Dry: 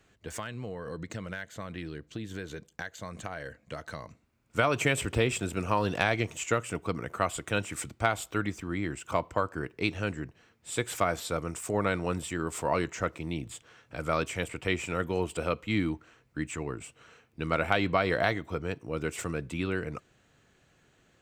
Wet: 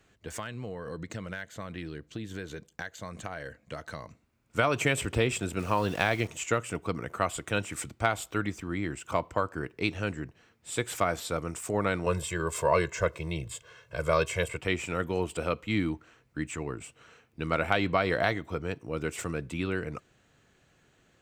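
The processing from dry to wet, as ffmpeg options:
-filter_complex "[0:a]asettb=1/sr,asplit=3[a][b][c];[a]atrim=end=5.594[d];[b]atrim=start=5.59:end=6.28,asetpts=PTS-STARTPTS,afade=t=in:d=0.004:c=qsin,afade=t=out:st=0.686:d=0.004:c=qsin,aeval=exprs='val(0)*gte(abs(val(0)),0.0075)':c=same[e];[c]atrim=start=6.276[f];[d][e]acrossfade=d=0.004:c1=hsin:c2=qsin[g];[g][f]acrossfade=d=0.004:c1=qsin:c2=hsin,asettb=1/sr,asplit=3[h][i][j];[h]atrim=end=12.064[k];[i]atrim=start=12.06:end=14.58,asetpts=PTS-STARTPTS,afade=t=in:d=0.004:c=qsin,afade=t=out:st=2.516:d=0.004:c=qsin,aecho=1:1:1.9:1,atrim=end_sample=111132[l];[j]atrim=start=14.576[m];[k][l]acrossfade=d=0.004:c1=hsin:c2=qsin[n];[n][m]acrossfade=d=0.004:c1=qsin:c2=hsin"

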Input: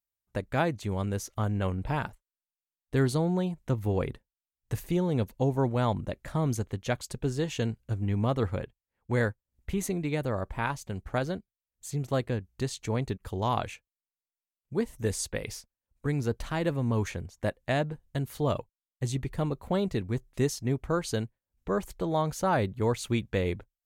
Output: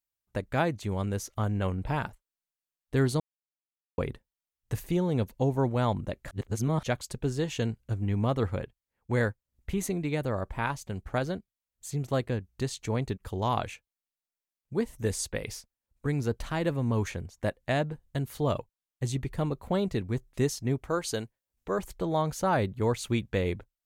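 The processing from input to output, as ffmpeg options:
-filter_complex "[0:a]asettb=1/sr,asplit=3[a][b][c];[a]atrim=end=20.824[d];[b]atrim=start=20.82:end=21.79,asetpts=PTS-STARTPTS,afade=t=in:d=0.004:c=qsin,afade=t=out:st=0.966:d=0.004:c=qsin,bass=f=250:g=-7,treble=f=4k:g=3[e];[c]atrim=start=21.786[f];[d][e]acrossfade=d=0.004:c1=hsin:c2=qsin[g];[g][f]acrossfade=d=0.004:c1=qsin:c2=hsin,asplit=5[h][i][j][k][l];[h]atrim=end=3.2,asetpts=PTS-STARTPTS,afade=t=out:st=3.196:d=0.004:c=hsin[m];[i]atrim=start=3.2:end=3.98,asetpts=PTS-STARTPTS,volume=0[n];[j]atrim=start=3.98:end=6.312,asetpts=PTS-STARTPTS,afade=t=in:d=0.004:c=hsin[o];[k]atrim=start=6.308:end=6.832,asetpts=PTS-STARTPTS,areverse[p];[l]atrim=start=6.828[q];[m][n][o]concat=n=3:v=0:a=1[r];[r][p]acrossfade=d=0.004:c1=hsin:c2=hsin[s];[s][q]acrossfade=d=0.004:c1=hsin:c2=hsin"

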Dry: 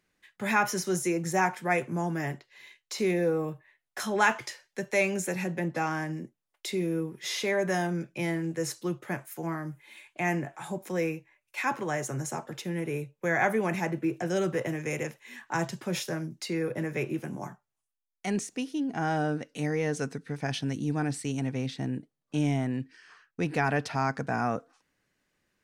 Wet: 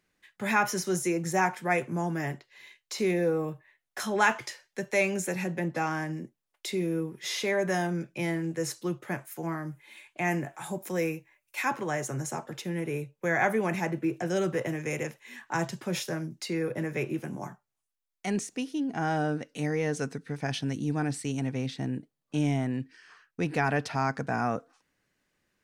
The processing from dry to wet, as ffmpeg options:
-filter_complex "[0:a]asettb=1/sr,asplit=3[a][b][c];[a]atrim=end=10.314[d];[b]atrim=start=10.31:end=11.68,asetpts=PTS-STARTPTS,afade=t=in:d=0.004:c=qsin,afade=t=out:st=1.366:d=0.004:c=qsin,highshelf=f=8.7k:g=9.5[e];[c]atrim=start=11.676[f];[d][e]acrossfade=d=0.004:c1=hsin:c2=qsin[g];[g][f]acrossfade=d=0.004:c1=qsin:c2=hsin"

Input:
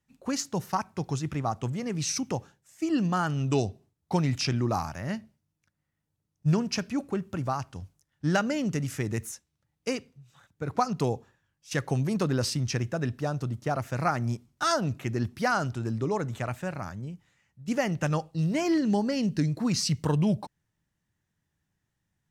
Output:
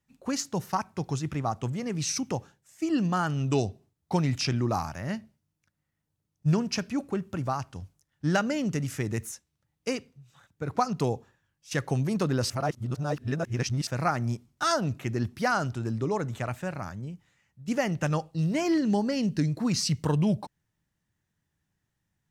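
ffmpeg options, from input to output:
-filter_complex "[0:a]asplit=3[a][b][c];[a]atrim=end=12.502[d];[b]atrim=start=12.498:end=13.872,asetpts=PTS-STARTPTS,areverse[e];[c]atrim=start=13.868[f];[d][e]acrossfade=d=0.004:c1=hsin:c2=hsin[g];[g][f]acrossfade=d=0.004:c1=hsin:c2=hsin"

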